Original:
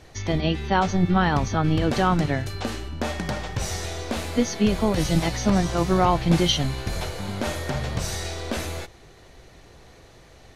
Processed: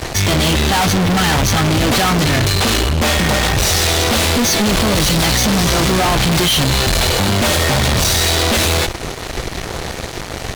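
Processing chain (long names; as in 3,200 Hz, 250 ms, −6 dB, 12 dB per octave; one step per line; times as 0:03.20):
dynamic equaliser 3,700 Hz, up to +6 dB, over −45 dBFS, Q 1.2
fuzz pedal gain 45 dB, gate −49 dBFS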